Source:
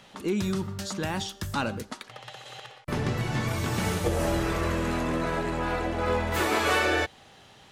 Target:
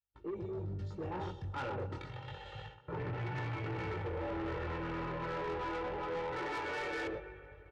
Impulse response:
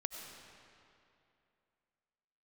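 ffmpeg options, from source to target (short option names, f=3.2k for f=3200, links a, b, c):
-filter_complex "[0:a]dynaudnorm=f=230:g=13:m=16.5dB,aeval=exprs='val(0)+0.00708*(sin(2*PI*50*n/s)+sin(2*PI*2*50*n/s)/2+sin(2*PI*3*50*n/s)/3+sin(2*PI*4*50*n/s)/4+sin(2*PI*5*50*n/s)/5)':c=same,aecho=1:1:127:0.398,afwtdn=0.0708,areverse,acompressor=threshold=-30dB:ratio=6,areverse,agate=range=-36dB:threshold=-49dB:ratio=16:detection=peak,highpass=79,aecho=1:1:2.2:0.91,asplit=2[a][b];[1:a]atrim=start_sample=2205[c];[b][c]afir=irnorm=-1:irlink=0,volume=-9.5dB[d];[a][d]amix=inputs=2:normalize=0,flanger=delay=17:depth=6.4:speed=0.3,lowpass=2.8k,asoftclip=type=tanh:threshold=-31.5dB,volume=-3dB"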